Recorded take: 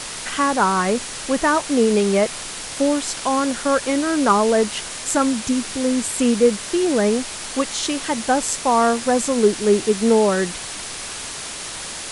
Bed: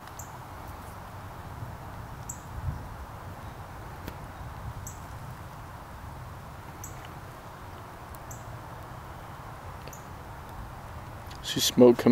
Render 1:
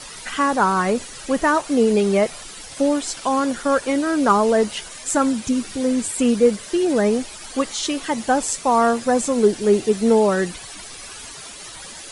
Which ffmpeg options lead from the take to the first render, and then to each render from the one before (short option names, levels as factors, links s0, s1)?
-af "afftdn=nr=12:nf=-32"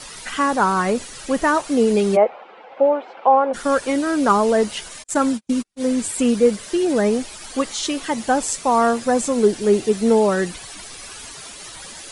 -filter_complex "[0:a]asplit=3[s0][s1][s2];[s0]afade=t=out:st=2.15:d=0.02[s3];[s1]highpass=f=260:w=0.5412,highpass=f=260:w=1.3066,equalizer=f=290:t=q:w=4:g=-8,equalizer=f=510:t=q:w=4:g=8,equalizer=f=810:t=q:w=4:g=10,equalizer=f=1800:t=q:w=4:g=-7,lowpass=f=2200:w=0.5412,lowpass=f=2200:w=1.3066,afade=t=in:st=2.15:d=0.02,afade=t=out:st=3.53:d=0.02[s4];[s2]afade=t=in:st=3.53:d=0.02[s5];[s3][s4][s5]amix=inputs=3:normalize=0,asplit=3[s6][s7][s8];[s6]afade=t=out:st=5.02:d=0.02[s9];[s7]agate=range=0.00501:threshold=0.0631:ratio=16:release=100:detection=peak,afade=t=in:st=5.02:d=0.02,afade=t=out:st=5.87:d=0.02[s10];[s8]afade=t=in:st=5.87:d=0.02[s11];[s9][s10][s11]amix=inputs=3:normalize=0"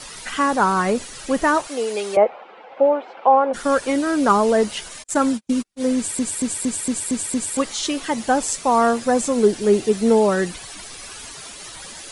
-filter_complex "[0:a]asettb=1/sr,asplit=3[s0][s1][s2];[s0]atrim=end=1.674[s3];[s1]atrim=start=1.67:end=2.17,asetpts=PTS-STARTPTS,afade=t=in:d=0.004:c=qsin,afade=t=out:st=0.496:d=0.004:c=qsin,highpass=580[s4];[s2]atrim=start=2.166[s5];[s3][s4]acrossfade=d=0.004:c1=hsin:c2=qsin[s6];[s6][s5]acrossfade=d=0.004:c1=qsin:c2=hsin,asplit=8[s7][s8][s9][s10][s11][s12][s13][s14];[s7]atrim=end=6.192[s15];[s8]atrim=start=5.958:end=6.192[s16];[s9]atrim=start=5.958:end=6.192[s17];[s10]atrim=start=5.958:end=6.192[s18];[s11]atrim=start=5.958:end=6.192[s19];[s12]atrim=start=5.958:end=6.192[s20];[s13]atrim=start=5.958:end=6.192[s21];[s14]atrim=start=7.568[s22];[s15][s16]acrossfade=d=0.004:c1=hsin:c2=hsin[s23];[s23][s17]acrossfade=d=0.004:c1=hsin:c2=hsin[s24];[s24][s18]acrossfade=d=0.004:c1=hsin:c2=hsin[s25];[s25][s19]acrossfade=d=0.004:c1=hsin:c2=hsin[s26];[s26][s20]acrossfade=d=0.004:c1=hsin:c2=hsin[s27];[s27][s21]acrossfade=d=0.004:c1=hsin:c2=hsin[s28];[s28][s22]acrossfade=d=0.004:c1=hsin:c2=hsin"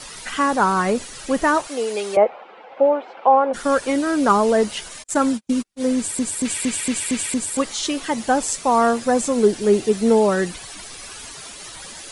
-filter_complex "[0:a]asettb=1/sr,asplit=3[s0][s1][s2];[s0]atrim=end=6.454[s3];[s1]atrim=start=6.45:end=7.34,asetpts=PTS-STARTPTS,afade=t=in:d=0.004:c=qsin,afade=t=out:st=0.886:d=0.004:c=qsin,equalizer=f=2500:t=o:w=1.3:g=10.5[s4];[s2]atrim=start=7.336[s5];[s3][s4]acrossfade=d=0.004:c1=hsin:c2=qsin[s6];[s6][s5]acrossfade=d=0.004:c1=qsin:c2=hsin"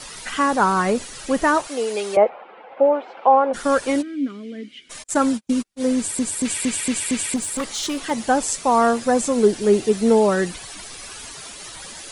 -filter_complex "[0:a]asettb=1/sr,asplit=3[s0][s1][s2];[s0]atrim=end=2.294[s3];[s1]atrim=start=2.29:end=2.94,asetpts=PTS-STARTPTS,afade=t=in:d=0.004:c=qsin,afade=t=out:st=0.646:d=0.004:c=qsin,lowpass=3100[s4];[s2]atrim=start=2.936[s5];[s3][s4]acrossfade=d=0.004:c1=hsin:c2=qsin[s6];[s6][s5]acrossfade=d=0.004:c1=qsin:c2=hsin,asplit=3[s7][s8][s9];[s7]afade=t=out:st=4.01:d=0.02[s10];[s8]asplit=3[s11][s12][s13];[s11]bandpass=f=270:t=q:w=8,volume=1[s14];[s12]bandpass=f=2290:t=q:w=8,volume=0.501[s15];[s13]bandpass=f=3010:t=q:w=8,volume=0.355[s16];[s14][s15][s16]amix=inputs=3:normalize=0,afade=t=in:st=4.01:d=0.02,afade=t=out:st=4.89:d=0.02[s17];[s9]afade=t=in:st=4.89:d=0.02[s18];[s10][s17][s18]amix=inputs=3:normalize=0,asettb=1/sr,asplit=3[s19][s20][s21];[s19]atrim=end=7.364[s22];[s20]atrim=start=7.36:end=8.11,asetpts=PTS-STARTPTS,afade=t=in:d=0.004:c=qsin,afade=t=out:st=0.746:d=0.004:c=qsin,volume=11.2,asoftclip=hard,volume=0.0891[s23];[s21]atrim=start=8.106[s24];[s22][s23]acrossfade=d=0.004:c1=hsin:c2=qsin[s25];[s25][s24]acrossfade=d=0.004:c1=qsin:c2=hsin"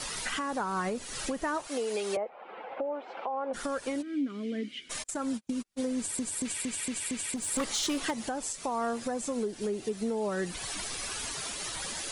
-af "acompressor=threshold=0.0398:ratio=6,alimiter=limit=0.075:level=0:latency=1:release=218"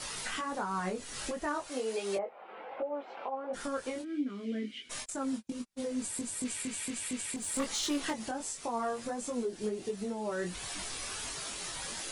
-af "flanger=delay=20:depth=3.3:speed=1.4"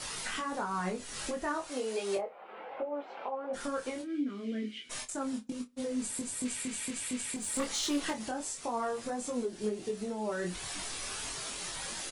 -filter_complex "[0:a]asplit=2[s0][s1];[s1]adelay=28,volume=0.299[s2];[s0][s2]amix=inputs=2:normalize=0,asplit=2[s3][s4];[s4]adelay=65,lowpass=f=3100:p=1,volume=0.0708,asplit=2[s5][s6];[s6]adelay=65,lowpass=f=3100:p=1,volume=0.34[s7];[s3][s5][s7]amix=inputs=3:normalize=0"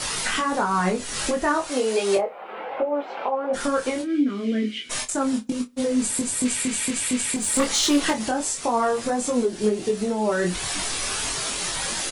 -af "volume=3.98"